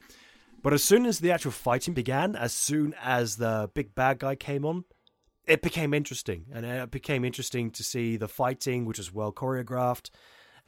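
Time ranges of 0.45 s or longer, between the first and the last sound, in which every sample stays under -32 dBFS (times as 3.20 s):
4.80–5.48 s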